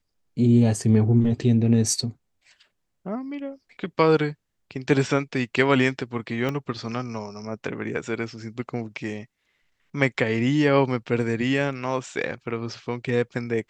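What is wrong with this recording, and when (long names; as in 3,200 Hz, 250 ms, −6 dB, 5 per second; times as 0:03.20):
0:06.49: click −15 dBFS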